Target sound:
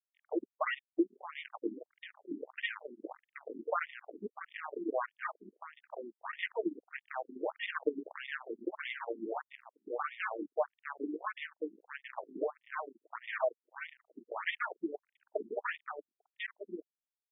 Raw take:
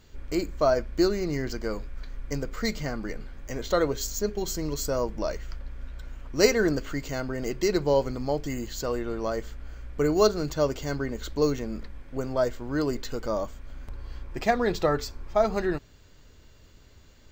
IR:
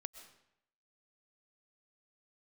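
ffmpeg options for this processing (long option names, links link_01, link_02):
-af "aecho=1:1:6.4:0.99,aeval=exprs='val(0)+0.002*sin(2*PI*710*n/s)':channel_layout=same,acompressor=threshold=-33dB:ratio=5,bass=frequency=250:gain=-5,treble=frequency=4000:gain=-8,acrusher=bits=4:mix=0:aa=0.5,aecho=1:1:1043:0.631,afftfilt=real='re*between(b*sr/1024,270*pow(2600/270,0.5+0.5*sin(2*PI*1.6*pts/sr))/1.41,270*pow(2600/270,0.5+0.5*sin(2*PI*1.6*pts/sr))*1.41)':imag='im*between(b*sr/1024,270*pow(2600/270,0.5+0.5*sin(2*PI*1.6*pts/sr))/1.41,270*pow(2600/270,0.5+0.5*sin(2*PI*1.6*pts/sr))*1.41)':win_size=1024:overlap=0.75,volume=7dB"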